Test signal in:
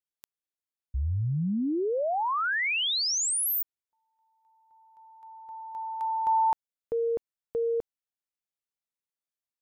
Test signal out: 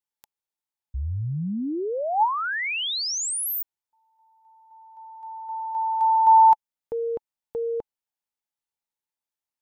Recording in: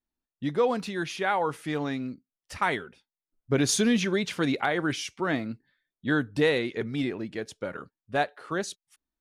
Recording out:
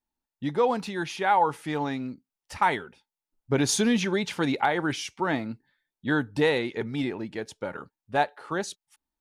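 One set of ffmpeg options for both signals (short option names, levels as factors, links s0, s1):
-af "equalizer=f=870:w=5.9:g=11"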